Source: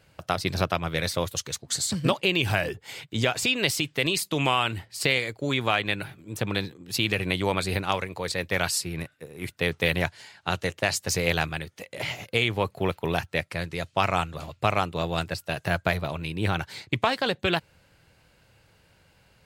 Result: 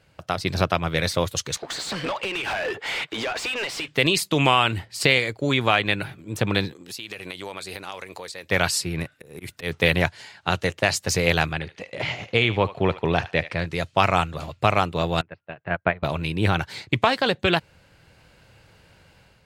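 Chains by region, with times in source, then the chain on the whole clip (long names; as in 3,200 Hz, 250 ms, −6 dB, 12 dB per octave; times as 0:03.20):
0:01.57–0:03.88: bass and treble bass −14 dB, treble −6 dB + downward compressor 5 to 1, threshold −38 dBFS + mid-hump overdrive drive 25 dB, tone 3,200 Hz, clips at −24.5 dBFS
0:06.73–0:08.49: bass and treble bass −11 dB, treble +7 dB + downward compressor 4 to 1, threshold −39 dBFS
0:09.15–0:09.74: high-shelf EQ 6,600 Hz +7.5 dB + volume swells 144 ms
0:11.53–0:13.66: high-frequency loss of the air 87 metres + feedback echo with a high-pass in the loop 74 ms, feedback 27%, high-pass 830 Hz, level −13.5 dB
0:15.21–0:16.03: low-pass filter 2,500 Hz 24 dB per octave + low-shelf EQ 77 Hz −11 dB + expander for the loud parts 2.5 to 1, over −35 dBFS
whole clip: high-shelf EQ 9,900 Hz −8 dB; automatic gain control gain up to 6.5 dB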